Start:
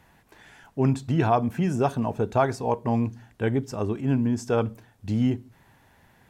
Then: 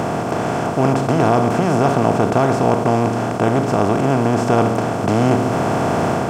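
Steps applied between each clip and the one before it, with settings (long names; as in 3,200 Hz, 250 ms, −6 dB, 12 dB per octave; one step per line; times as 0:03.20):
compressor on every frequency bin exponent 0.2
automatic gain control gain up to 4.5 dB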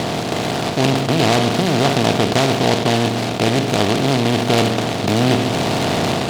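high-frequency loss of the air 190 metres
short delay modulated by noise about 2,700 Hz, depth 0.12 ms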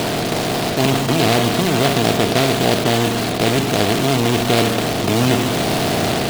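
spectral magnitudes quantised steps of 15 dB
in parallel at −4.5 dB: wrap-around overflow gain 18.5 dB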